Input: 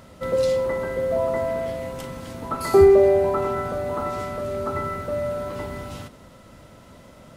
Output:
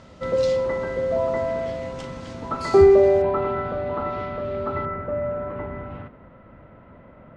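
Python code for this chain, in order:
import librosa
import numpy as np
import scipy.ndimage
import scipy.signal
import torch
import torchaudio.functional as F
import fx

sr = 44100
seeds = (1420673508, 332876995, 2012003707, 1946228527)

y = fx.lowpass(x, sr, hz=fx.steps((0.0, 6800.0), (3.22, 3600.0), (4.85, 2100.0)), slope=24)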